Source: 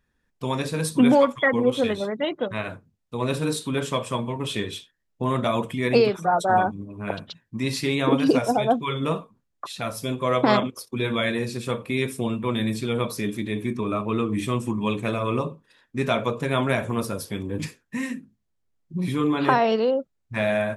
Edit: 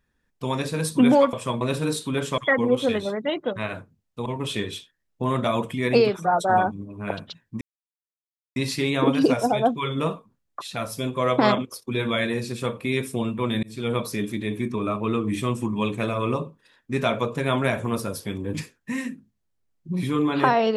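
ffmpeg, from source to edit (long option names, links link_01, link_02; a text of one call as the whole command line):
ffmpeg -i in.wav -filter_complex "[0:a]asplit=7[link_01][link_02][link_03][link_04][link_05][link_06][link_07];[link_01]atrim=end=1.332[link_08];[link_02]atrim=start=3.978:end=4.262[link_09];[link_03]atrim=start=3.208:end=3.982[link_10];[link_04]atrim=start=1.328:end=3.212[link_11];[link_05]atrim=start=4.258:end=7.61,asetpts=PTS-STARTPTS,afade=type=out:start_time=3.348:duration=0.004:curve=hsin,apad=pad_dur=0.95[link_12];[link_06]atrim=start=7.61:end=12.68,asetpts=PTS-STARTPTS,afade=type=in:duration=0.004:curve=hsin,afade=type=out:start_time=5.066:duration=0.004:curve=hsin[link_13];[link_07]atrim=start=12.68,asetpts=PTS-STARTPTS,afade=type=in:duration=0.26[link_14];[link_08][link_09]acrossfade=duration=0.004:curve1=hsin:curve2=hsin[link_15];[link_15][link_10]acrossfade=duration=0.004:curve1=hsin:curve2=hsin[link_16];[link_16][link_11]acrossfade=duration=0.004:curve1=hsin:curve2=hsin[link_17];[link_12][link_13][link_14]concat=n=3:v=0:a=1[link_18];[link_17][link_18]acrossfade=duration=0.004:curve1=hsin:curve2=hsin" out.wav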